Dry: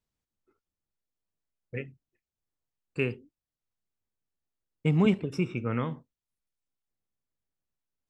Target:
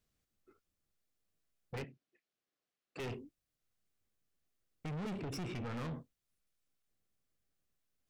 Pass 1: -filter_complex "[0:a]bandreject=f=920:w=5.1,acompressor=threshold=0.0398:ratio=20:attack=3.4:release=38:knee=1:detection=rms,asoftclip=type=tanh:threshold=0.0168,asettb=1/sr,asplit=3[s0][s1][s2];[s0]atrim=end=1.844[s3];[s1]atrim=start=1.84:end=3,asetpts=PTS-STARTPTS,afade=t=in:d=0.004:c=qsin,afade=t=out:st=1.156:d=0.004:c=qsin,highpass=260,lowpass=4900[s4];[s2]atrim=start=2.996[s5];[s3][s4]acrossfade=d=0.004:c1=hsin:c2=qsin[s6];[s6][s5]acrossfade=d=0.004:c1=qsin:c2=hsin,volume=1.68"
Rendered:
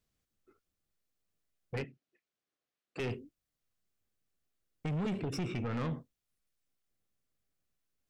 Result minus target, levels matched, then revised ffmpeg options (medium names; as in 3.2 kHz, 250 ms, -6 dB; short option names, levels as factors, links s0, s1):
saturation: distortion -4 dB
-filter_complex "[0:a]bandreject=f=920:w=5.1,acompressor=threshold=0.0398:ratio=20:attack=3.4:release=38:knee=1:detection=rms,asoftclip=type=tanh:threshold=0.00708,asettb=1/sr,asplit=3[s0][s1][s2];[s0]atrim=end=1.844[s3];[s1]atrim=start=1.84:end=3,asetpts=PTS-STARTPTS,afade=t=in:d=0.004:c=qsin,afade=t=out:st=1.156:d=0.004:c=qsin,highpass=260,lowpass=4900[s4];[s2]atrim=start=2.996[s5];[s3][s4]acrossfade=d=0.004:c1=hsin:c2=qsin[s6];[s6][s5]acrossfade=d=0.004:c1=qsin:c2=hsin,volume=1.68"